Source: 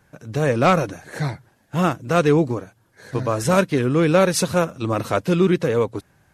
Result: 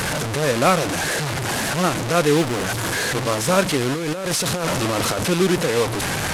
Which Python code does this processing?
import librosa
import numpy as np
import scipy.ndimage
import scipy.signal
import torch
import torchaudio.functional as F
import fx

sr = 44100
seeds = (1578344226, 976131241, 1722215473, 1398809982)

y = fx.delta_mod(x, sr, bps=64000, step_db=-16.0)
y = fx.low_shelf(y, sr, hz=170.0, db=-6.0)
y = fx.quant_float(y, sr, bits=4, at=(2.36, 3.16))
y = fx.over_compress(y, sr, threshold_db=-22.0, ratio=-1.0, at=(3.92, 5.23), fade=0.02)